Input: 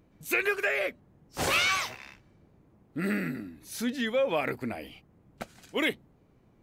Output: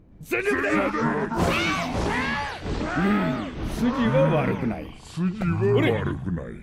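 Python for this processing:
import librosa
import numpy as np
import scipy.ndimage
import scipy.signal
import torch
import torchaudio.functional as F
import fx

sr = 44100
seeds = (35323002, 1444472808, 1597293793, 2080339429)

y = fx.echo_pitch(x, sr, ms=90, semitones=-5, count=3, db_per_echo=-3.0)
y = fx.tilt_eq(y, sr, slope=-2.5)
y = fx.echo_stepped(y, sr, ms=111, hz=2800.0, octaves=0.7, feedback_pct=70, wet_db=-10.0)
y = y * 10.0 ** (2.5 / 20.0)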